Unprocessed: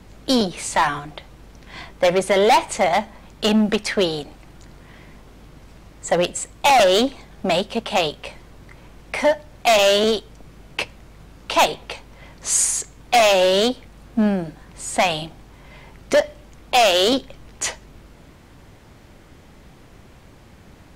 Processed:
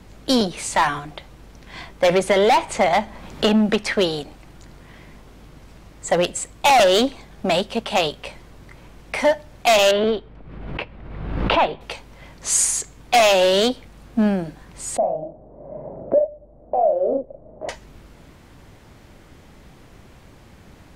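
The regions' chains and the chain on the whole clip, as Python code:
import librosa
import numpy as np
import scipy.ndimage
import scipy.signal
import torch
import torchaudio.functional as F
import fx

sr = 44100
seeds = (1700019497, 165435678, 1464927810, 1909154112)

y = fx.chain(x, sr, fx.high_shelf(hz=5300.0, db=-5.0),
    fx.band_squash(depth_pct=70), at=(2.09, 3.93))
y = fx.chain(y, sr, fx.air_absorb(metres=430.0),
    fx.pre_swell(db_per_s=40.0), at=(9.91, 11.81))
y = fx.chain(y, sr, fx.ladder_lowpass(hz=660.0, resonance_pct=75),
    fx.doubler(ms=40.0, db=-3.0),
    fx.band_squash(depth_pct=70), at=(14.97, 17.69))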